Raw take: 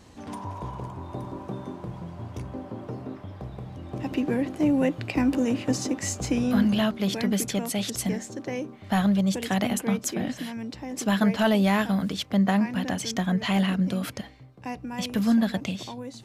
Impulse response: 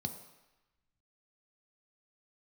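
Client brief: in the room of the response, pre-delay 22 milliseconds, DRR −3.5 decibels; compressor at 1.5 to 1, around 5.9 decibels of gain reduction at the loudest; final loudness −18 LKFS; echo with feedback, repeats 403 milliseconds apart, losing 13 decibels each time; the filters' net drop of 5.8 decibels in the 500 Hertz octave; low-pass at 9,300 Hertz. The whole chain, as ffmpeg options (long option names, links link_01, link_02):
-filter_complex "[0:a]lowpass=9300,equalizer=frequency=500:width_type=o:gain=-7.5,acompressor=threshold=-35dB:ratio=1.5,aecho=1:1:403|806|1209:0.224|0.0493|0.0108,asplit=2[link_01][link_02];[1:a]atrim=start_sample=2205,adelay=22[link_03];[link_02][link_03]afir=irnorm=-1:irlink=0,volume=3.5dB[link_04];[link_01][link_04]amix=inputs=2:normalize=0,volume=2dB"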